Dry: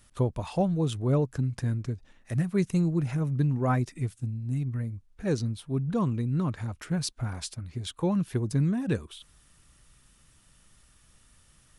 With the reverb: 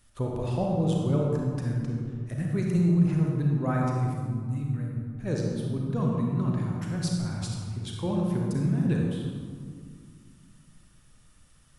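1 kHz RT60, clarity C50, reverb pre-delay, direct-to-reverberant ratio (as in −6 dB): 2.1 s, −0.5 dB, 32 ms, −1.5 dB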